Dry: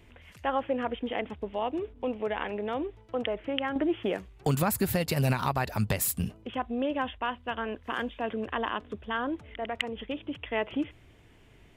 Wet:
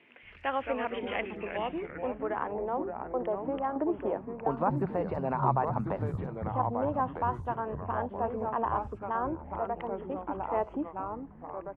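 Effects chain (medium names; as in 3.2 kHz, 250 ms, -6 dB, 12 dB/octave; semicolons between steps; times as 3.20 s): ever faster or slower copies 134 ms, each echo -3 st, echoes 3, each echo -6 dB; three bands offset in time mids, highs, lows 60/230 ms, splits 180/4600 Hz; low-pass sweep 2.5 kHz -> 950 Hz, 1.78–2.56 s; trim -3.5 dB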